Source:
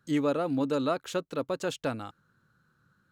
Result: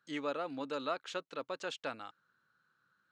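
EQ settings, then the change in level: differentiator; tape spacing loss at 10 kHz 35 dB; +15.0 dB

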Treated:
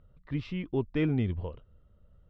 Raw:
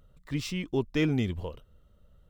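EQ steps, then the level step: low-pass 8.2 kHz; distance through air 360 m; peaking EQ 95 Hz +3.5 dB; -1.0 dB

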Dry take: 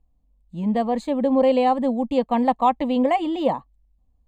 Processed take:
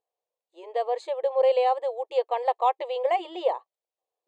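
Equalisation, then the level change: brick-wall FIR high-pass 350 Hz; distance through air 67 m; peaking EQ 1.3 kHz -5 dB 2.2 oct; 0.0 dB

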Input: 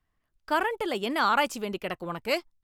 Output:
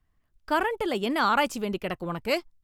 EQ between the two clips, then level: bass shelf 160 Hz +4 dB; bass shelf 330 Hz +4 dB; 0.0 dB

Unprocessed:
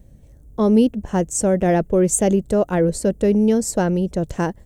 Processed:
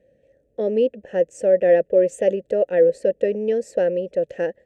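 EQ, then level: vowel filter e; +8.5 dB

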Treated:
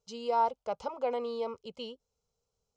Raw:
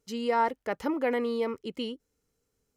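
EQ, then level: low-pass 6.8 kHz 24 dB/octave; tone controls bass -4 dB, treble -1 dB; static phaser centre 750 Hz, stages 4; 0.0 dB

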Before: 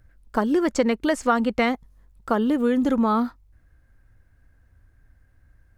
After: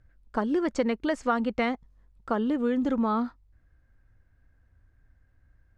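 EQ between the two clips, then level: distance through air 75 m; -5.0 dB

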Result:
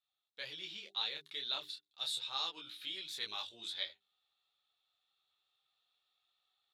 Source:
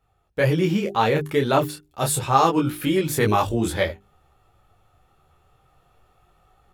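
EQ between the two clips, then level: band-pass filter 3.8 kHz, Q 8.5; +2.0 dB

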